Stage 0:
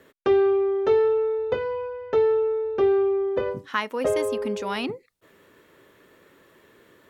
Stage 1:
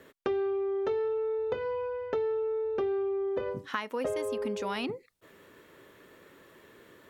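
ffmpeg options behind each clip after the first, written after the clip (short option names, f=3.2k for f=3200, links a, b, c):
-af "acompressor=threshold=-30dB:ratio=4"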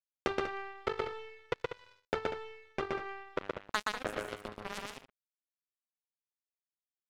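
-af "acrusher=bits=3:mix=0:aa=0.5,aecho=1:1:122.4|192.4:0.794|0.316,adynamicequalizer=threshold=0.00178:dfrequency=4600:dqfactor=0.7:tfrequency=4600:tqfactor=0.7:attack=5:release=100:ratio=0.375:range=2.5:mode=cutabove:tftype=highshelf"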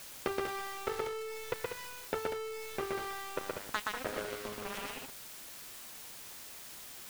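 -af "aeval=exprs='val(0)+0.5*0.0224*sgn(val(0))':c=same,volume=-3.5dB"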